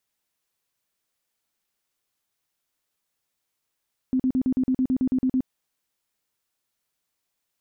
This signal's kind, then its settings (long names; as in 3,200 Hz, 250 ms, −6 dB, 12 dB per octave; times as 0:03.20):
tone bursts 258 Hz, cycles 17, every 0.11 s, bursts 12, −18.5 dBFS